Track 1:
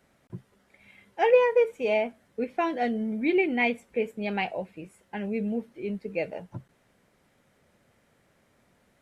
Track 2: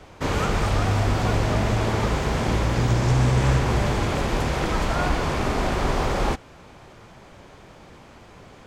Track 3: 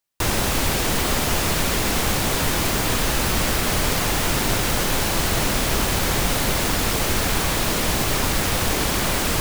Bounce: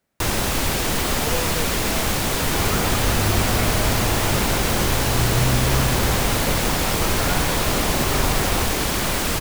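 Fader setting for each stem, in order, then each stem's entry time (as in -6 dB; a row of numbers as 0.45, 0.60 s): -10.5, -2.0, -0.5 dB; 0.00, 2.30, 0.00 s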